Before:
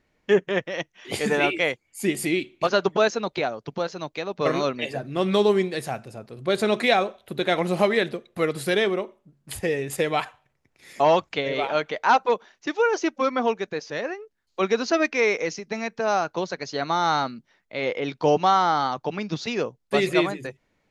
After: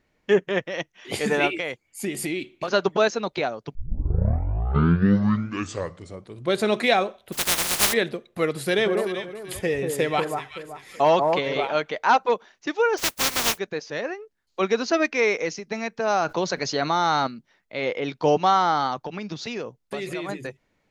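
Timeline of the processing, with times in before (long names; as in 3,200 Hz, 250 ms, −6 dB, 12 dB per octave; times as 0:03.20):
0:01.47–0:02.68: downward compressor, threshold −23 dBFS
0:03.75: tape start 2.83 s
0:07.32–0:07.92: compressing power law on the bin magnitudes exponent 0.1
0:08.59–0:11.61: delay that swaps between a low-pass and a high-pass 190 ms, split 1,400 Hz, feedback 55%, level −4 dB
0:12.97–0:13.57: compressing power law on the bin magnitudes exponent 0.15
0:16.10–0:17.27: envelope flattener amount 50%
0:19.03–0:20.29: downward compressor, threshold −27 dBFS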